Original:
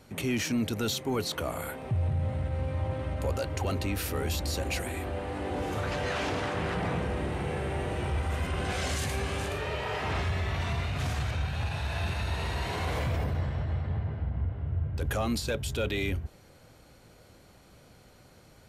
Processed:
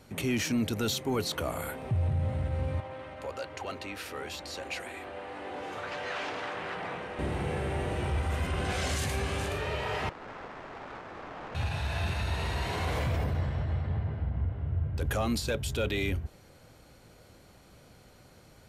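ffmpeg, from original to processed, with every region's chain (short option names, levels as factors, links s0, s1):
-filter_complex "[0:a]asettb=1/sr,asplit=3[s0][s1][s2];[s0]atrim=end=2.804[s3];[s1]atrim=start=2.8:end=7.19,asetpts=PTS-STARTPTS,afade=t=in:d=0.004:c=qsin,afade=t=out:st=4.386:d=0.004:c=qsin,highpass=f=860:p=1,aemphasis=mode=reproduction:type=50fm[s4];[s2]atrim=start=7.186[s5];[s3][s4]acrossfade=d=0.004:c1=hsin:c2=qsin[s6];[s6][s5]acrossfade=d=0.004:c1=qsin:c2=hsin,asettb=1/sr,asplit=3[s7][s8][s9];[s7]atrim=end=10.094[s10];[s8]atrim=start=10.09:end=11.55,asetpts=PTS-STARTPTS,afade=t=in:d=0.004:c=qsin,afade=t=out:st=1.456:d=0.004:c=qsin,aeval=exprs='(mod(53.1*val(0)+1,2)-1)/53.1':c=same,asplit=2[s11][s12];[s12]highpass=f=720:p=1,volume=5.62,asoftclip=type=tanh:threshold=0.0708[s13];[s11][s13]amix=inputs=2:normalize=0,lowpass=f=1000:p=1,volume=0.501,adynamicsmooth=sensitivity=4.5:basefreq=800[s14];[s9]atrim=start=11.546[s15];[s10][s14]acrossfade=d=0.004:c1=hsin:c2=qsin[s16];[s16][s15]acrossfade=d=0.004:c1=qsin:c2=hsin"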